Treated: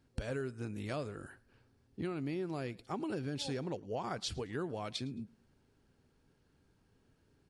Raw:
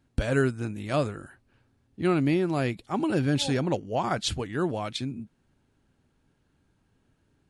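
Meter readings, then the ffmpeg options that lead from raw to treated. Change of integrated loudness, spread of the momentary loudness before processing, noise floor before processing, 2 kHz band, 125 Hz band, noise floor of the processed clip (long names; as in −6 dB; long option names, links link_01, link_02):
−12.0 dB, 9 LU, −70 dBFS, −13.0 dB, −12.5 dB, −72 dBFS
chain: -filter_complex "[0:a]superequalizer=7b=1.58:14b=1.58,alimiter=limit=-16dB:level=0:latency=1:release=351,acompressor=threshold=-35dB:ratio=3,asplit=2[link_01][link_02];[link_02]aecho=0:1:109|218:0.0631|0.0183[link_03];[link_01][link_03]amix=inputs=2:normalize=0,volume=-2.5dB"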